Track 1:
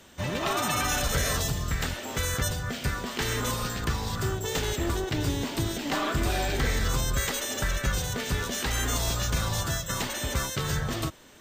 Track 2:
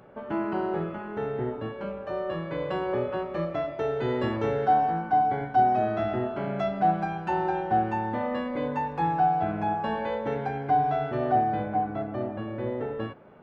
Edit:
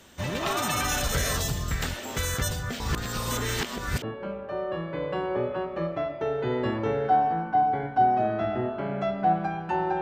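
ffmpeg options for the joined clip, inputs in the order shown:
-filter_complex "[0:a]apad=whole_dur=10.01,atrim=end=10.01,asplit=2[a][b];[a]atrim=end=2.802[c];[b]atrim=start=2.798:end=4.022,asetpts=PTS-STARTPTS,areverse[d];[1:a]atrim=start=1.598:end=7.59[e];[c][d]acrossfade=d=0.004:c1=hsin:c2=hsin[f];[f][e]acrossfade=d=0.004:c1=hsin:c2=hsin"

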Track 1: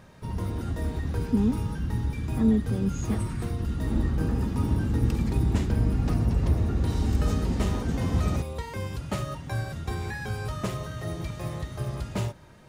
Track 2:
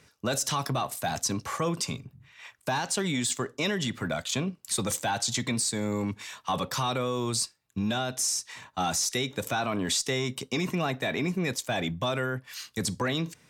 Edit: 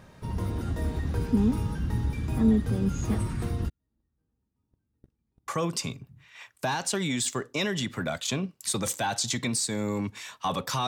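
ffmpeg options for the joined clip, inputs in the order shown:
-filter_complex "[0:a]asplit=3[a][b][c];[a]afade=t=out:st=3.68:d=0.02[d];[b]agate=range=-53dB:threshold=-16dB:ratio=16:release=100:detection=peak,afade=t=in:st=3.68:d=0.02,afade=t=out:st=5.48:d=0.02[e];[c]afade=t=in:st=5.48:d=0.02[f];[d][e][f]amix=inputs=3:normalize=0,apad=whole_dur=10.87,atrim=end=10.87,atrim=end=5.482[g];[1:a]atrim=start=1.518:end=6.91[h];[g][h]acrossfade=d=0.004:c1=hsin:c2=hsin"

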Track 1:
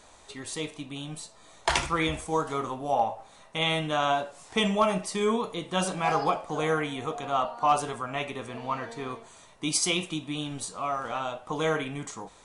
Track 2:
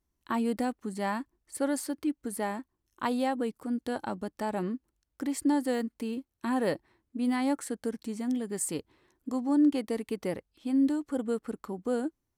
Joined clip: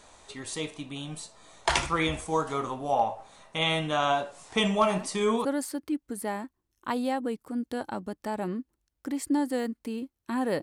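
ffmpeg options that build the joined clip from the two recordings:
-filter_complex "[1:a]asplit=2[a][b];[0:a]apad=whole_dur=10.62,atrim=end=10.62,atrim=end=5.452[c];[b]atrim=start=1.598:end=6.77[d];[a]atrim=start=0.89:end=1.6,asetpts=PTS-STARTPTS,volume=-11.5dB,afade=t=in:d=0.004:c=hsin,afade=t=out:st=0.706:d=0.004:c=hsin,adelay=4740[e];[c][d]acrossfade=d=0.004:c1=hsin:c2=hsin[f];[f][e]amix=inputs=2:normalize=0"

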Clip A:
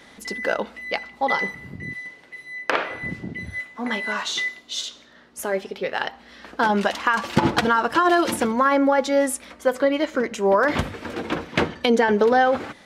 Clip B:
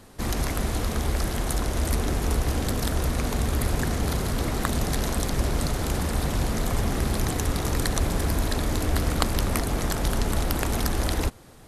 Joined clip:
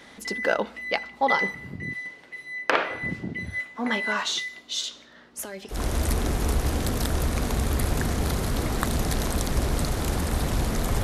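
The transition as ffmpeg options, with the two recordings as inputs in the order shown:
-filter_complex "[0:a]asettb=1/sr,asplit=3[a][b][c];[a]atrim=end=4.364[d];[b]atrim=start=4.36:end=5.82,asetpts=PTS-STARTPTS,afade=t=in:d=0.004:c=qsin,afade=t=out:st=1.456:d=0.004:c=qsin,acrossover=split=150|3000[e][f][g];[f]acompressor=threshold=-36dB:ratio=6:attack=3.2:release=140:knee=2.83:detection=peak[h];[e][h][g]amix=inputs=3:normalize=0[i];[c]atrim=start=5.816[j];[d][i]acrossfade=d=0.004:c1=hsin:c2=qsin[k];[k][j]acrossfade=d=0.004:c1=qsin:c2=hsin,apad=whole_dur=11.03,atrim=end=11.03,atrim=end=5.82,asetpts=PTS-STARTPTS[l];[1:a]atrim=start=1.5:end=6.85,asetpts=PTS-STARTPTS[m];[l][m]acrossfade=d=0.14:c1=tri:c2=tri"

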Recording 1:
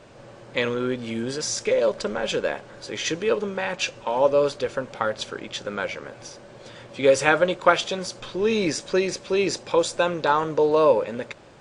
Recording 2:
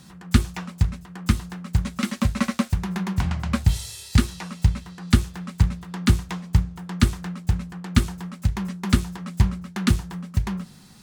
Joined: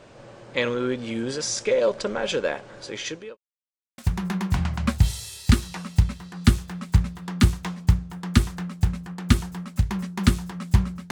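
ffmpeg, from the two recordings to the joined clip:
-filter_complex "[0:a]apad=whole_dur=11.11,atrim=end=11.11,asplit=2[a][b];[a]atrim=end=3.37,asetpts=PTS-STARTPTS,afade=t=out:st=2.83:d=0.54[c];[b]atrim=start=3.37:end=3.98,asetpts=PTS-STARTPTS,volume=0[d];[1:a]atrim=start=2.64:end=9.77,asetpts=PTS-STARTPTS,afade=t=in:d=0.004:c=hsin[e];[c][d][e]concat=n=3:v=0:a=1"

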